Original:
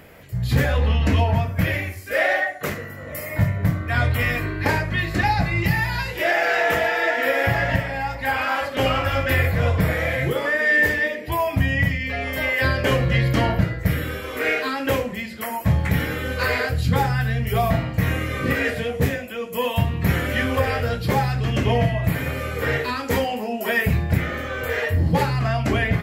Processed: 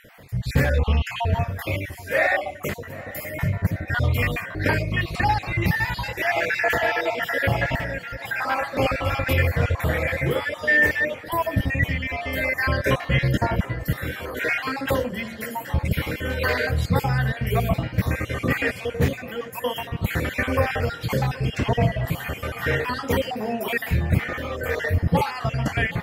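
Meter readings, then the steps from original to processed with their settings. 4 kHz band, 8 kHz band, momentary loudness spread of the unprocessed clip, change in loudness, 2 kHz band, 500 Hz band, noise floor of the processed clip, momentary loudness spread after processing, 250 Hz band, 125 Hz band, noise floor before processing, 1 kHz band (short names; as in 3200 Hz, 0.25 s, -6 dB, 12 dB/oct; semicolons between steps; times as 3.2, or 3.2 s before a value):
-2.5 dB, -2.0 dB, 6 LU, -2.0 dB, -2.0 dB, -2.0 dB, -38 dBFS, 7 LU, -2.5 dB, -2.5 dB, -34 dBFS, -2.0 dB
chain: random spectral dropouts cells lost 36%; tape echo 0.774 s, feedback 85%, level -18.5 dB, low-pass 3200 Hz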